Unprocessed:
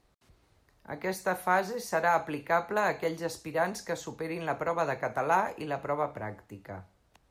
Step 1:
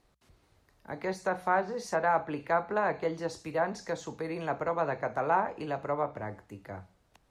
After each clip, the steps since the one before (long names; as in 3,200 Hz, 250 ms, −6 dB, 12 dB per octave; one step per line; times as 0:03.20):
treble cut that deepens with the level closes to 2,400 Hz, closed at −23.5 dBFS
mains-hum notches 60/120/180 Hz
dynamic equaliser 2,500 Hz, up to −4 dB, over −45 dBFS, Q 0.93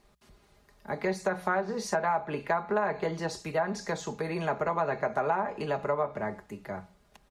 comb filter 4.9 ms, depth 57%
downward compressor 6 to 1, threshold −28 dBFS, peak gain reduction 9 dB
level +4 dB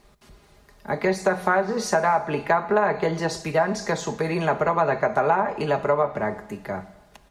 dense smooth reverb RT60 1.2 s, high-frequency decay 1×, DRR 14.5 dB
level +7.5 dB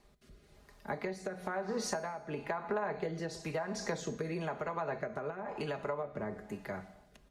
downward compressor, threshold −25 dBFS, peak gain reduction 10 dB
rotating-speaker cabinet horn 1 Hz
tuned comb filter 250 Hz, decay 0.97 s, mix 50%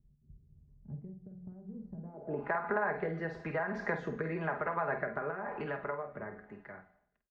fade-out on the ending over 2.08 s
double-tracking delay 49 ms −9 dB
low-pass filter sweep 130 Hz → 1,700 Hz, 0:01.92–0:02.53